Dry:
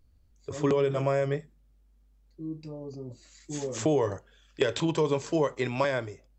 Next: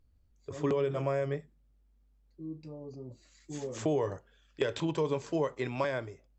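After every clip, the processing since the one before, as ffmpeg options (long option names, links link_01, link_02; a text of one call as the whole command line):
ffmpeg -i in.wav -af "highshelf=frequency=4600:gain=-6,volume=-4.5dB" out.wav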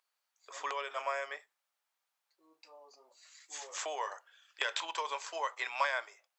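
ffmpeg -i in.wav -af "highpass=frequency=840:width=0.5412,highpass=frequency=840:width=1.3066,volume=5.5dB" out.wav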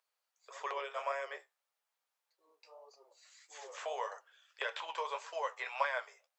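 ffmpeg -i in.wav -filter_complex "[0:a]acrossover=split=3300[link_01][link_02];[link_02]acompressor=threshold=-51dB:ratio=4:attack=1:release=60[link_03];[link_01][link_03]amix=inputs=2:normalize=0,lowshelf=frequency=370:width_type=q:width=3:gain=-6.5,flanger=delay=6.1:depth=8.9:regen=48:speed=1.7:shape=sinusoidal,volume=1dB" out.wav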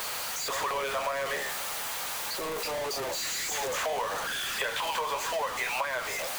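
ffmpeg -i in.wav -af "aeval=exprs='val(0)+0.5*0.02*sgn(val(0))':channel_layout=same,acompressor=threshold=-35dB:ratio=6,bandreject=frequency=5300:width=30,volume=7dB" out.wav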